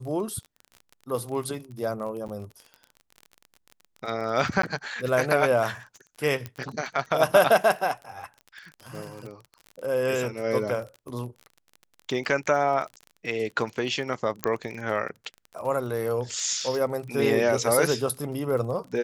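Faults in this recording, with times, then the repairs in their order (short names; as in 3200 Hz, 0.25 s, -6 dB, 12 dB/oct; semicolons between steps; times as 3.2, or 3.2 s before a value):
crackle 31/s -34 dBFS
2.28–2.29 gap 8.7 ms
4.62–4.63 gap 13 ms
6.46 pop -19 dBFS
14.44 pop -8 dBFS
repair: de-click; interpolate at 2.28, 8.7 ms; interpolate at 4.62, 13 ms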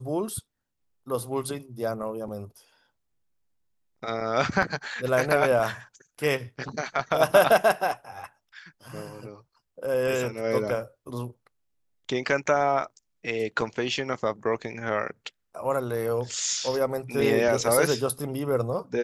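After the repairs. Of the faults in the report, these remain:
none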